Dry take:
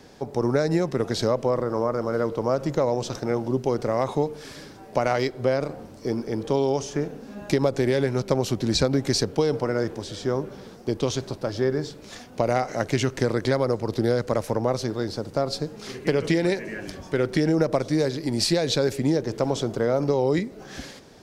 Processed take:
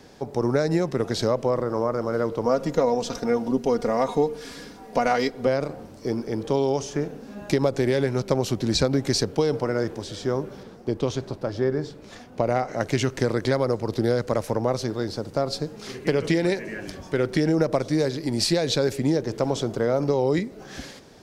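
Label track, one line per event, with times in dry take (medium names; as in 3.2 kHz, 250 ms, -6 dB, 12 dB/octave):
2.450000	5.470000	comb 4.2 ms, depth 67%
10.630000	12.810000	treble shelf 3.1 kHz -8 dB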